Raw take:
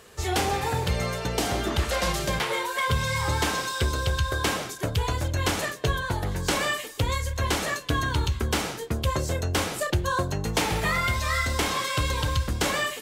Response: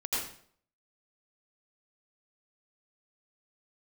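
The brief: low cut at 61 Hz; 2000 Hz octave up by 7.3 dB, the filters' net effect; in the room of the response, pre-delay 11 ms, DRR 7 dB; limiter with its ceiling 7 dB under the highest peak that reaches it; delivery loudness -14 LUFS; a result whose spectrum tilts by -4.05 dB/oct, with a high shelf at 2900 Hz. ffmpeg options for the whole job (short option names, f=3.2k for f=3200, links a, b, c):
-filter_complex "[0:a]highpass=61,equalizer=f=2k:t=o:g=7.5,highshelf=f=2.9k:g=3.5,alimiter=limit=-13.5dB:level=0:latency=1,asplit=2[a][b];[1:a]atrim=start_sample=2205,adelay=11[c];[b][c]afir=irnorm=-1:irlink=0,volume=-13.5dB[d];[a][d]amix=inputs=2:normalize=0,volume=9.5dB"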